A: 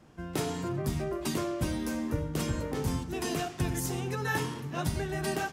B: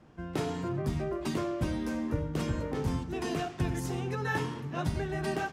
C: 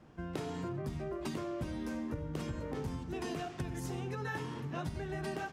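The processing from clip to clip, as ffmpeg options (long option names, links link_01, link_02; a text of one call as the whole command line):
ffmpeg -i in.wav -af "aemphasis=mode=reproduction:type=50kf" out.wav
ffmpeg -i in.wav -af "acompressor=threshold=-34dB:ratio=6,volume=-1dB" out.wav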